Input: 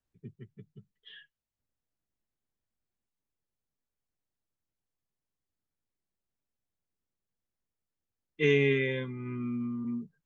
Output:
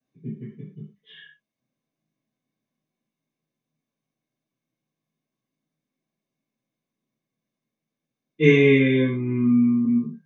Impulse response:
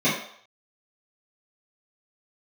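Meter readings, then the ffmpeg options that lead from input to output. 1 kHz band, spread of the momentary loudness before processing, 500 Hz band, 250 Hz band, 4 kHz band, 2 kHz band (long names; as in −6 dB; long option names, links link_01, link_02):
can't be measured, 12 LU, +9.0 dB, +14.5 dB, +6.0 dB, +7.5 dB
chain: -filter_complex "[1:a]atrim=start_sample=2205,atrim=end_sample=6615[link_01];[0:a][link_01]afir=irnorm=-1:irlink=0,volume=-8.5dB"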